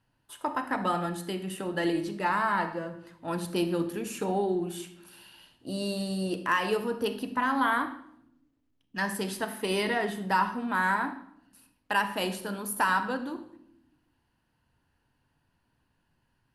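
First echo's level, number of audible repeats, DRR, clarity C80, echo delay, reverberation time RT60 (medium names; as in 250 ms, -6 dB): no echo, no echo, 10.0 dB, 14.5 dB, no echo, 0.75 s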